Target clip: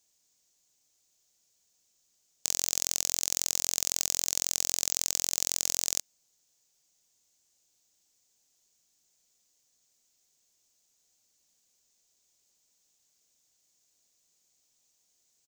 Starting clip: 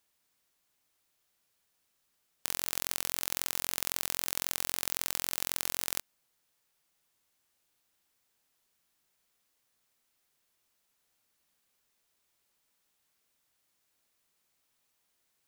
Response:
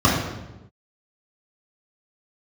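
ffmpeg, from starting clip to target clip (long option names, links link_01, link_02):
-af "firequalizer=gain_entry='entry(620,0);entry(1200,-8);entry(6700,14);entry(10000,-3);entry(15000,0)':delay=0.05:min_phase=1"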